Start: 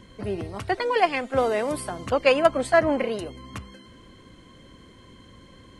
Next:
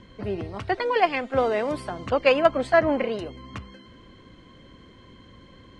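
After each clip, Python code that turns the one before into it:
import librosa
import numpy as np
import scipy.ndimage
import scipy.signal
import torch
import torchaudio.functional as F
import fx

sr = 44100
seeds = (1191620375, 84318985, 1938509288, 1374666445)

y = scipy.signal.sosfilt(scipy.signal.butter(2, 4800.0, 'lowpass', fs=sr, output='sos'), x)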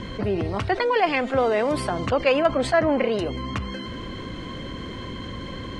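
y = fx.env_flatten(x, sr, amount_pct=50)
y = y * 10.0 ** (-2.5 / 20.0)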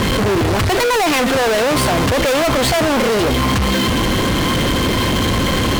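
y = fx.fuzz(x, sr, gain_db=44.0, gate_db=-46.0)
y = y * 10.0 ** (-1.0 / 20.0)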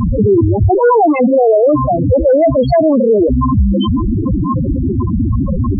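y = fx.spec_topn(x, sr, count=4)
y = y * 10.0 ** (8.0 / 20.0)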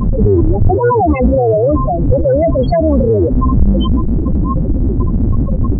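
y = fx.octave_divider(x, sr, octaves=2, level_db=3.0)
y = y * 10.0 ** (-2.5 / 20.0)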